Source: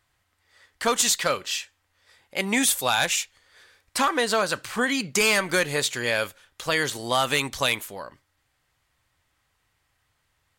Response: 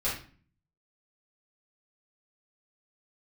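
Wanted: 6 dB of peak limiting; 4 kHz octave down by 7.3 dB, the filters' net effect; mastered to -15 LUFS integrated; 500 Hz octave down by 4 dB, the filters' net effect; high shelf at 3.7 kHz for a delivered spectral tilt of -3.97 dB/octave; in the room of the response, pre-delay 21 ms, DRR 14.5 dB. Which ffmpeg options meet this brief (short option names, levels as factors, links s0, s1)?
-filter_complex "[0:a]equalizer=f=500:t=o:g=-4.5,highshelf=f=3700:g=-7.5,equalizer=f=4000:t=o:g=-4.5,alimiter=limit=0.119:level=0:latency=1,asplit=2[s0][s1];[1:a]atrim=start_sample=2205,adelay=21[s2];[s1][s2]afir=irnorm=-1:irlink=0,volume=0.0794[s3];[s0][s3]amix=inputs=2:normalize=0,volume=5.31"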